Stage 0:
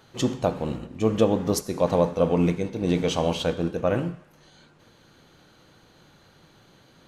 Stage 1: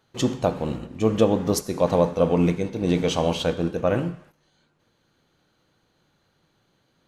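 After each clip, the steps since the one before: gate -50 dBFS, range -13 dB; trim +1.5 dB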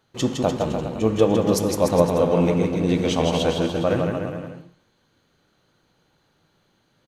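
bouncing-ball echo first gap 160 ms, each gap 0.85×, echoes 5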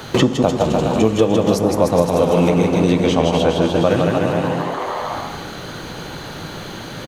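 frequency-shifting echo 149 ms, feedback 61%, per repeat +110 Hz, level -14.5 dB; three bands compressed up and down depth 100%; trim +4 dB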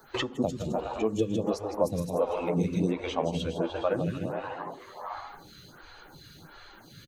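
expander on every frequency bin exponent 1.5; lamp-driven phase shifter 1.4 Hz; trim -7 dB

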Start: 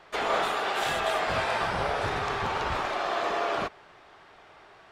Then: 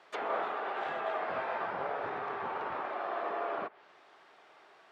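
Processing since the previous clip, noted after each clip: high-pass 260 Hz 12 dB/octave; low-pass that closes with the level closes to 1.7 kHz, closed at -28 dBFS; trim -6 dB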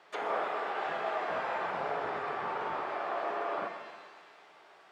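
pitch-shifted reverb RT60 1.5 s, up +7 st, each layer -8 dB, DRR 5 dB

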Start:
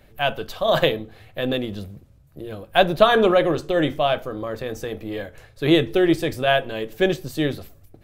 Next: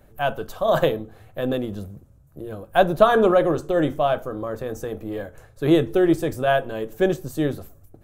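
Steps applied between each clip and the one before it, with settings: high-order bell 3.1 kHz -9 dB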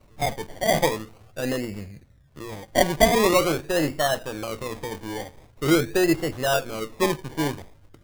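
decimation with a swept rate 26×, swing 60% 0.44 Hz; trim -2.5 dB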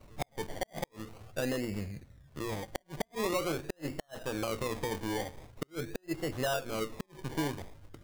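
compression 5:1, threshold -30 dBFS, peak gain reduction 17 dB; inverted gate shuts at -22 dBFS, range -40 dB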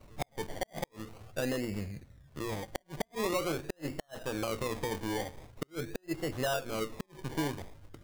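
no audible change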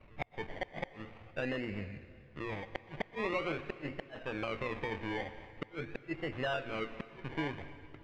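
resonant low-pass 2.4 kHz, resonance Q 2.3; plate-style reverb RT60 2.1 s, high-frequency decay 0.95×, pre-delay 110 ms, DRR 13.5 dB; trim -4 dB

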